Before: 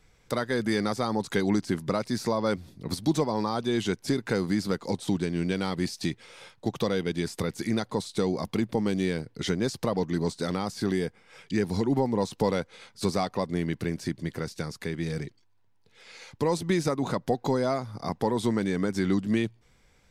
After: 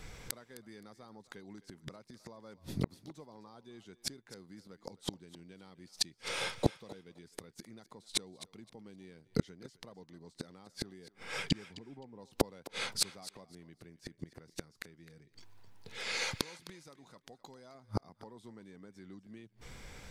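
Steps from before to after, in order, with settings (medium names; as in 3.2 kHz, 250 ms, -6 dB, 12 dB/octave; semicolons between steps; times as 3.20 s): 11.66–12.19 s: Bessel low-pass 2 kHz; 16.32–17.75 s: tilt shelf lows -4.5 dB, about 1.4 kHz; inverted gate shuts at -26 dBFS, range -38 dB; thinning echo 260 ms, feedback 18%, high-pass 430 Hz, level -16 dB; trim +12 dB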